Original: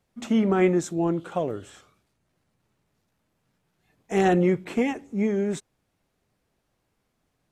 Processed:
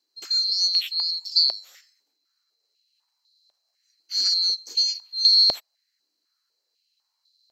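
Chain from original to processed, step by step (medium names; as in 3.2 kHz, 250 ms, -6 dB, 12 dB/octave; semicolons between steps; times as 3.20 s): split-band scrambler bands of 4 kHz; step-sequenced high-pass 4 Hz 310–4000 Hz; trim -3 dB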